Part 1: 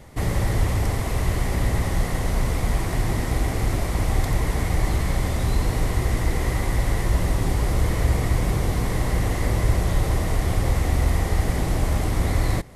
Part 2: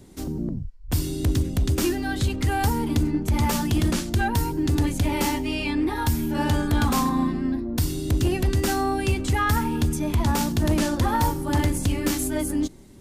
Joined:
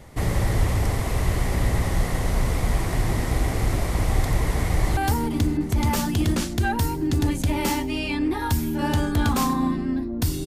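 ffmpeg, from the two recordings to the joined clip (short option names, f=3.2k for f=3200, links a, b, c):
-filter_complex "[0:a]apad=whole_dur=10.46,atrim=end=10.46,atrim=end=4.972[a];[1:a]atrim=start=2.528:end=8.02[b];[a][b]acrossfade=d=0.004:c1=hsin:c2=hsin,asplit=2[c][d];[d]afade=t=in:st=4.7:d=0.01,afade=t=out:st=4.97:d=0.01,aecho=0:1:300|600|900|1200|1500|1800|2100|2400|2700|3000|3300|3600:0.266073|0.212858|0.170286|0.136229|0.108983|0.0871866|0.0697493|0.0557994|0.0446396|0.0357116|0.0285693|0.0228555[e];[c][e]amix=inputs=2:normalize=0"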